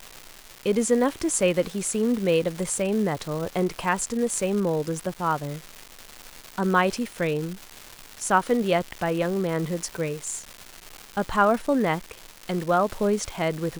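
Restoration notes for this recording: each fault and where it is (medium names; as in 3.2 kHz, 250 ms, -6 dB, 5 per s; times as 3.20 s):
crackle 480 per s -30 dBFS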